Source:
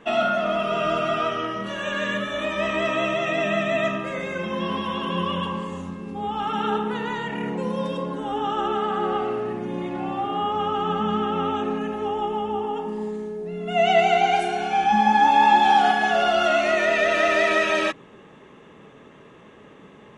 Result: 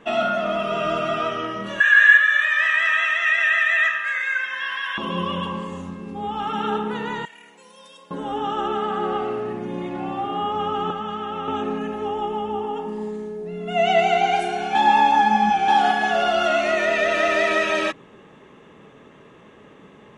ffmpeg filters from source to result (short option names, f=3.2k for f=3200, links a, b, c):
-filter_complex "[0:a]asettb=1/sr,asplit=3[a][b][c];[a]atrim=end=1.804[d];[b]atrim=start=1.8:end=4.98,asetpts=PTS-STARTPTS,afade=t=in:d=0.004:c=qsin,afade=t=out:st=3.176:d=0.004:c=qsin,highpass=f=1.7k:t=q:w=9.4[e];[c]atrim=start=4.976[f];[d][e]acrossfade=d=0.004:c1=hsin:c2=qsin[g];[g][f]acrossfade=d=0.004:c1=qsin:c2=hsin,asettb=1/sr,asplit=3[h][i][j];[h]atrim=end=7.254[k];[i]atrim=start=7.25:end=8.11,asetpts=PTS-STARTPTS,afade=t=in:d=0.004:c=qsin,afade=t=out:st=0.856:d=0.004:c=qsin,aderivative[l];[j]atrim=start=8.106[m];[k][l]acrossfade=d=0.004:c1=hsin:c2=qsin[n];[n][m]acrossfade=d=0.004:c1=qsin:c2=hsin,asettb=1/sr,asplit=3[o][p][q];[o]atrim=end=10.904[r];[p]atrim=start=10.9:end=11.48,asetpts=PTS-STARTPTS,afade=t=in:d=0.004:c=qsin,afade=t=out:st=0.576:d=0.004:c=qsin,acrossover=split=120|460[s][t][u];[s]acompressor=threshold=-48dB:ratio=4[v];[t]acompressor=threshold=-38dB:ratio=4[w];[u]acompressor=threshold=-27dB:ratio=4[x];[v][w][x]amix=inputs=3:normalize=0[y];[q]atrim=start=11.476[z];[r][y]acrossfade=d=0.004:c1=hsin:c2=qsin[aa];[aa][z]acrossfade=d=0.004:c1=qsin:c2=hsin,asplit=3[ab][ac][ad];[ab]atrim=end=14.752[ae];[ac]atrim=start=14.748:end=15.682,asetpts=PTS-STARTPTS,areverse[af];[ad]atrim=start=15.678[ag];[ae][af]acrossfade=d=0.004:c1=hsin:c2=hsin[ah];[ah][ag]acrossfade=d=0.004:c1=hsin:c2=hsin"